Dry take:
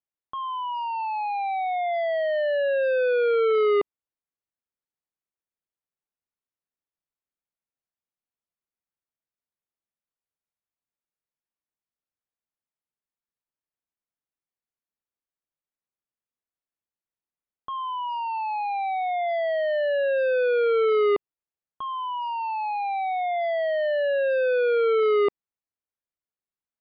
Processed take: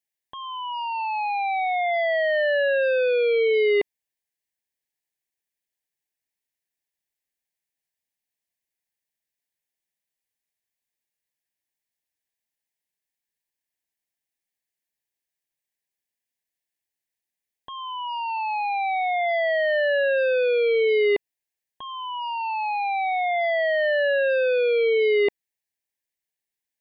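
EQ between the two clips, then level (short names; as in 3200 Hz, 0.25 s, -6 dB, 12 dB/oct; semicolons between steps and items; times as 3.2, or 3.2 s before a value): Butterworth band-stop 1300 Hz, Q 1.3; bell 1600 Hz +14.5 dB 0.88 oct; high shelf 3900 Hz +9.5 dB; 0.0 dB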